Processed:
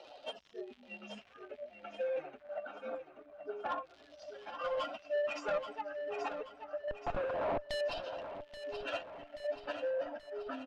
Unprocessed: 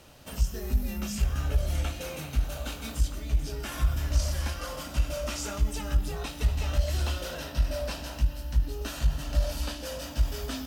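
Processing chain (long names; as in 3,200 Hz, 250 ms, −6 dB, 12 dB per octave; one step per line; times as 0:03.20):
expanding power law on the bin magnitudes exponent 2.1
high-pass filter 410 Hz 24 dB per octave
parametric band 740 Hz +8.5 dB 0.43 octaves
0:06.88–0:07.81: comparator with hysteresis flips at −53 dBFS
surface crackle 180 per second −53 dBFS
auto-filter low-pass saw down 0.26 Hz 950–4,200 Hz
soft clipping −34 dBFS, distortion −14 dB
repeating echo 830 ms, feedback 53%, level −9.5 dB
amplitude modulation by smooth noise, depth 55%
level +8 dB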